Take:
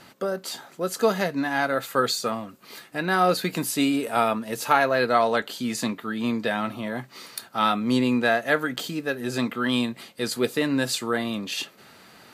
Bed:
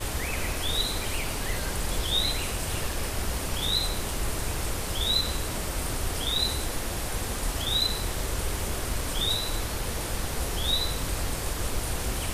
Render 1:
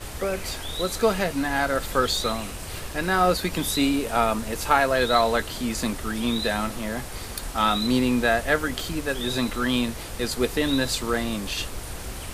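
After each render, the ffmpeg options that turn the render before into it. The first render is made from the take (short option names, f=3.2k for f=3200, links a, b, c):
-filter_complex "[1:a]volume=-5dB[a];[0:a][a]amix=inputs=2:normalize=0"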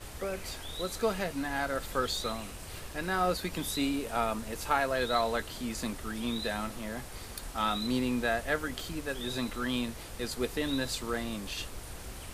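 -af "volume=-8.5dB"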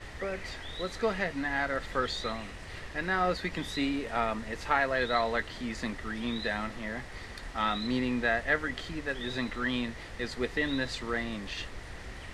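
-af "lowpass=4.9k,equalizer=f=1.9k:t=o:w=0.26:g=12"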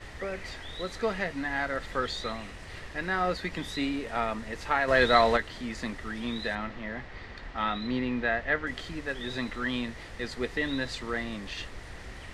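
-filter_complex "[0:a]asplit=3[a][b][c];[a]afade=t=out:st=4.87:d=0.02[d];[b]acontrast=88,afade=t=in:st=4.87:d=0.02,afade=t=out:st=5.36:d=0.02[e];[c]afade=t=in:st=5.36:d=0.02[f];[d][e][f]amix=inputs=3:normalize=0,asettb=1/sr,asplit=3[g][h][i];[g]atrim=end=6.554[j];[h]atrim=start=6.55:end=8.67,asetpts=PTS-STARTPTS,afade=t=in:d=0.004:c=qsin,afade=t=out:st=2.116:d=0.004:c=qsin,lowpass=3.8k[k];[i]atrim=start=8.666[l];[j][k]acrossfade=d=0.004:c1=hsin:c2=qsin[m];[m][l]acrossfade=d=0.004:c1=qsin:c2=hsin"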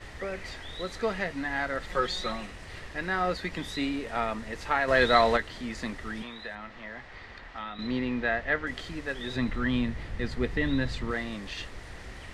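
-filter_complex "[0:a]asettb=1/sr,asplit=3[a][b][c];[a]atrim=end=1.894[d];[b]atrim=start=1.89:end=2.46,asetpts=PTS-STARTPTS,afade=t=in:d=0.004:c=qsin,afade=t=out:st=0.566:d=0.004:c=qsin,aecho=1:1:5.5:0.72,atrim=end_sample=25137[e];[c]atrim=start=2.456[f];[d][e]acrossfade=d=0.004:c1=hsin:c2=qsin[g];[g][f]acrossfade=d=0.004:c1=qsin:c2=hsin,asettb=1/sr,asplit=3[h][i][j];[h]atrim=end=6.224[k];[i]atrim=start=6.22:end=7.79,asetpts=PTS-STARTPTS,afade=t=in:d=0.004:c=qsin,afade=t=out:st=1.566:d=0.004:c=qsin,acrossover=split=580|1800|3600[l][m][n][o];[l]acompressor=threshold=-49dB:ratio=3[p];[m]acompressor=threshold=-42dB:ratio=3[q];[n]acompressor=threshold=-48dB:ratio=3[r];[o]acompressor=threshold=-60dB:ratio=3[s];[p][q][r][s]amix=inputs=4:normalize=0[t];[j]atrim=start=7.786[u];[k][t]acrossfade=d=0.004:c1=hsin:c2=qsin[v];[v][u]acrossfade=d=0.004:c1=qsin:c2=hsin,asettb=1/sr,asplit=3[w][x][y];[w]atrim=end=9.364[z];[x]atrim=start=9.36:end=11.11,asetpts=PTS-STARTPTS,afade=t=in:d=0.004:c=qsin,afade=t=out:st=1.746:d=0.004:c=qsin,bass=f=250:g=10,treble=f=4k:g=-6[aa];[y]atrim=start=11.106[ab];[z][aa]acrossfade=d=0.004:c1=hsin:c2=qsin[ac];[ac][ab]acrossfade=d=0.004:c1=qsin:c2=hsin"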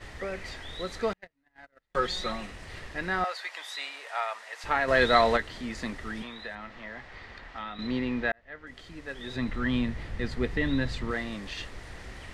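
-filter_complex "[0:a]asettb=1/sr,asplit=3[a][b][c];[a]atrim=end=1.134[d];[b]atrim=start=1.13:end=1.95,asetpts=PTS-STARTPTS,afade=t=in:d=0.004:c=qsin,afade=t=out:st=0.816:d=0.004:c=qsin,agate=range=-43dB:threshold=-27dB:ratio=16:release=100:detection=peak[e];[c]atrim=start=1.946[f];[d][e]acrossfade=d=0.004:c1=hsin:c2=qsin[g];[g][f]acrossfade=d=0.004:c1=qsin:c2=hsin,asettb=1/sr,asplit=3[h][i][j];[h]atrim=end=3.244[k];[i]atrim=start=3.24:end=4.64,asetpts=PTS-STARTPTS,afade=t=in:d=0.004:c=qsin,afade=t=out:st=1.396:d=0.004:c=qsin,highpass=f=670:w=0.5412,highpass=f=670:w=1.3066[l];[j]atrim=start=4.636[m];[k][l]acrossfade=d=0.004:c1=hsin:c2=qsin[n];[n][m]acrossfade=d=0.004:c1=qsin:c2=hsin,asplit=2[o][p];[o]atrim=end=8.32,asetpts=PTS-STARTPTS,afade=t=out:st=8.316:d=0.004:c=hsin[q];[p]atrim=start=8.32,asetpts=PTS-STARTPTS,afade=t=in:d=1.4[r];[q][r]concat=n=2:v=0:a=1"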